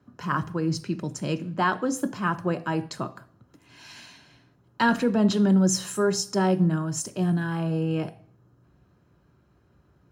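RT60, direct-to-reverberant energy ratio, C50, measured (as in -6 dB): 0.55 s, 11.0 dB, 20.0 dB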